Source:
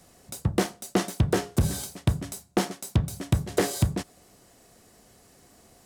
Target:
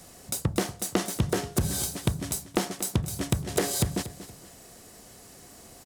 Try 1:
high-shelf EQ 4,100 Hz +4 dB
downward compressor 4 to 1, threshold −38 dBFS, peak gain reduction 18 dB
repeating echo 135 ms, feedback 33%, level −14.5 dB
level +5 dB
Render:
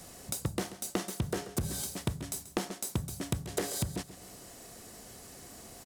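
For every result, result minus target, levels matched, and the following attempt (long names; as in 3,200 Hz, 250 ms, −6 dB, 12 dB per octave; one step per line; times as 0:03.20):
echo 101 ms early; downward compressor: peak gain reduction +7 dB
high-shelf EQ 4,100 Hz +4 dB
downward compressor 4 to 1, threshold −38 dBFS, peak gain reduction 18 dB
repeating echo 236 ms, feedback 33%, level −14.5 dB
level +5 dB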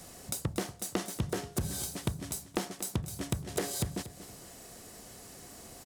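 downward compressor: peak gain reduction +7 dB
high-shelf EQ 4,100 Hz +4 dB
downward compressor 4 to 1, threshold −28.5 dBFS, peak gain reduction 10.5 dB
repeating echo 236 ms, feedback 33%, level −14.5 dB
level +5 dB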